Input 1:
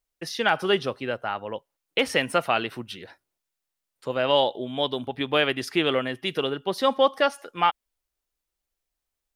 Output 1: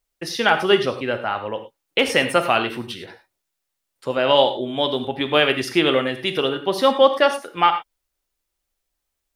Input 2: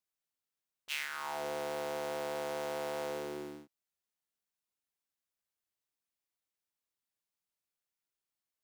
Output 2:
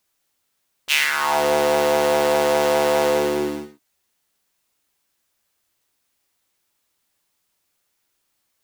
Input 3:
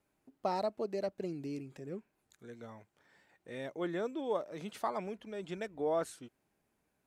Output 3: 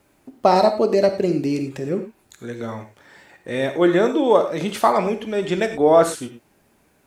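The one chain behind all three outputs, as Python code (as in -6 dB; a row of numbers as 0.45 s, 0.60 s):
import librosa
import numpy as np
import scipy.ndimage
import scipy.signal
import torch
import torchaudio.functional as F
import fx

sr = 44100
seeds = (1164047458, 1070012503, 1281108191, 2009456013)

y = fx.rev_gated(x, sr, seeds[0], gate_ms=130, shape='flat', drr_db=7.0)
y = y * 10.0 ** (-2 / 20.0) / np.max(np.abs(y))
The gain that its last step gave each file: +4.5 dB, +18.5 dB, +18.5 dB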